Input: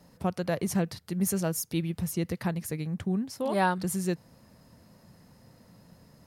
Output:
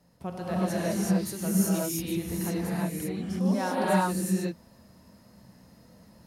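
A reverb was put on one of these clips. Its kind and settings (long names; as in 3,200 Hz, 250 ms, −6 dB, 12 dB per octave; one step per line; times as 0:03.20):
reverb whose tail is shaped and stops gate 400 ms rising, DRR −8 dB
level −7.5 dB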